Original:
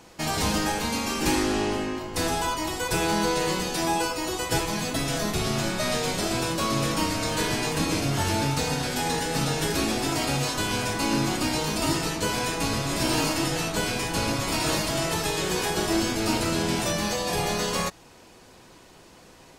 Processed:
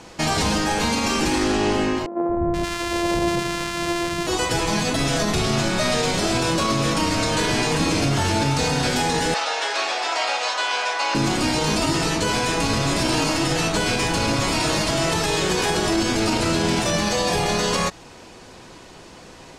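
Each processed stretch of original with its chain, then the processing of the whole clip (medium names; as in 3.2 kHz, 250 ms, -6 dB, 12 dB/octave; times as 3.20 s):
2.06–4.27 s: sorted samples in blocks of 128 samples + three bands offset in time mids, lows, highs 230/480 ms, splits 230/890 Hz
9.34–11.15 s: high-pass 600 Hz 24 dB/octave + distance through air 100 m
whole clip: peak limiter -19.5 dBFS; low-pass 8.5 kHz 12 dB/octave; trim +8 dB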